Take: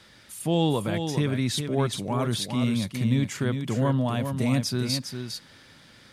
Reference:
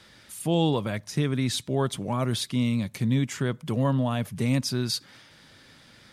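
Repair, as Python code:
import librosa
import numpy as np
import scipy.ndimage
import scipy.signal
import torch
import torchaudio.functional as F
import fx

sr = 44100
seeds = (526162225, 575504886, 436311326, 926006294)

y = fx.fix_echo_inverse(x, sr, delay_ms=405, level_db=-7.0)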